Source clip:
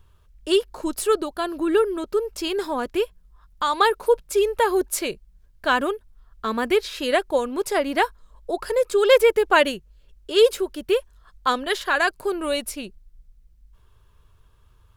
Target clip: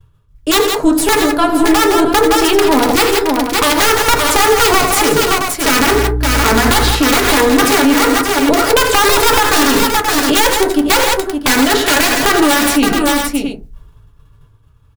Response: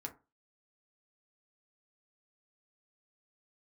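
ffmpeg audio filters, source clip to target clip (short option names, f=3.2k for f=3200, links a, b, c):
-filter_complex "[0:a]bandreject=f=46.17:t=h:w=4,bandreject=f=92.34:t=h:w=4,bandreject=f=138.51:t=h:w=4,bandreject=f=184.68:t=h:w=4,agate=range=-33dB:threshold=-46dB:ratio=3:detection=peak,equalizer=f=130:t=o:w=1.2:g=10.5,dynaudnorm=f=390:g=9:m=15dB,aeval=exprs='(tanh(5.01*val(0)+0.75)-tanh(0.75))/5.01':c=same,asettb=1/sr,asplit=3[a][b][c];[a]atrim=end=5.804[d];[b]atrim=start=5.8:end=6.91,asetpts=PTS-STARTPTS,afade=t=in:d=0.004:c=qsin,afade=t=out:st=1.106:d=0.004:c=qsin,aeval=exprs='val(0)+0.0251*(sin(2*PI*60*n/s)+sin(2*PI*2*60*n/s)/2+sin(2*PI*3*60*n/s)/3+sin(2*PI*4*60*n/s)/4+sin(2*PI*5*60*n/s)/5)':c=same[e];[c]atrim=start=6.906[f];[d][e]acrossfade=d=0.004:c1=hsin:c2=qsin[g];[g][f]acrossfade=d=0.004:c1=qsin:c2=hsin,aeval=exprs='(mod(4.47*val(0)+1,2)-1)/4.47':c=same,aecho=1:1:76|86|164|568|669:0.15|0.15|0.266|0.335|0.224[h];[1:a]atrim=start_sample=2205[i];[h][i]afir=irnorm=-1:irlink=0,alimiter=level_in=19.5dB:limit=-1dB:release=50:level=0:latency=1,volume=-1dB"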